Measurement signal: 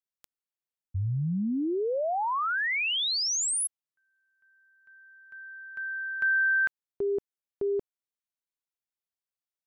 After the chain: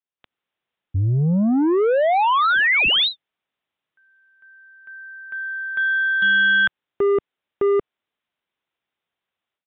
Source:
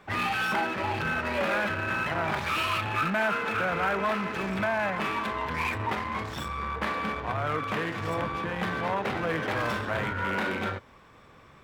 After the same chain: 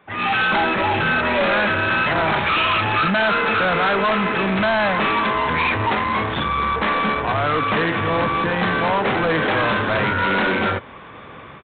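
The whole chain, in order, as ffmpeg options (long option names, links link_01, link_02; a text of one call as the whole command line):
ffmpeg -i in.wav -af "highpass=frequency=120:poles=1,dynaudnorm=framelen=170:gausssize=3:maxgain=16dB,aresample=8000,asoftclip=type=tanh:threshold=-15dB,aresample=44100" out.wav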